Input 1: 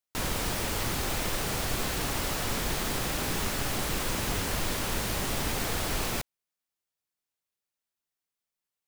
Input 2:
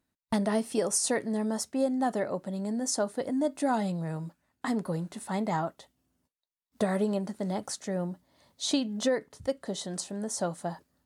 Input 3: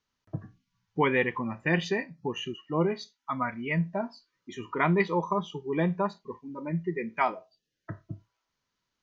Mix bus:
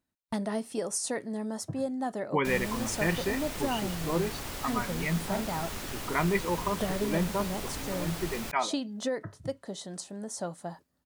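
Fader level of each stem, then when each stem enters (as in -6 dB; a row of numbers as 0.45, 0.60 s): -7.5, -4.5, -3.0 dB; 2.30, 0.00, 1.35 s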